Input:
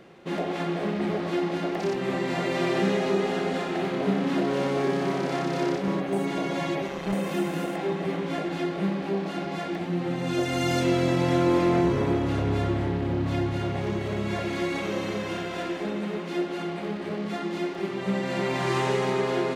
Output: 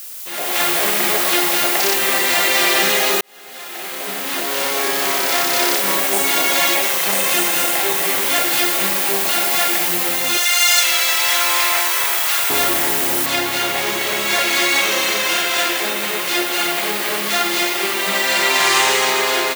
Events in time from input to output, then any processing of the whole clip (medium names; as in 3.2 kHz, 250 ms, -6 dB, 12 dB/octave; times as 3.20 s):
3.21–5.95 s: fade in
8.36–8.87 s: treble shelf 8.9 kHz +7.5 dB
10.37–12.50 s: high-pass 980 Hz
13.26 s: noise floor step -48 dB -56 dB
16.54–18.68 s: doubling 49 ms -6 dB
whole clip: high-pass 620 Hz 6 dB/octave; tilt EQ +4 dB/octave; level rider gain up to 15 dB